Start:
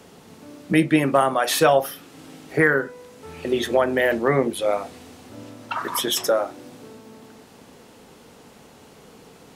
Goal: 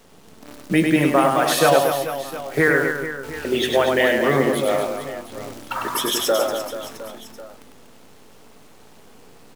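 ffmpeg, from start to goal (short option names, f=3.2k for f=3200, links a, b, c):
-filter_complex "[0:a]asettb=1/sr,asplit=3[a][b][c];[a]atrim=end=3.554[d];[b]atrim=start=3.55:end=4.08,asetpts=PTS-STARTPTS,afade=t=in:d=0.004:c=qsin,afade=t=out:st=0.526:d=0.004:c=qsin,equalizer=f=2.9k:w=1.6:g=7[e];[c]atrim=start=4.076[f];[d][e]acrossfade=d=0.004:c1=hsin:c2=qsin[g];[g][f]acrossfade=d=0.004:c1=qsin:c2=hsin,acrusher=bits=7:dc=4:mix=0:aa=0.000001,aecho=1:1:100|240|436|710.4|1095:0.631|0.398|0.251|0.158|0.1"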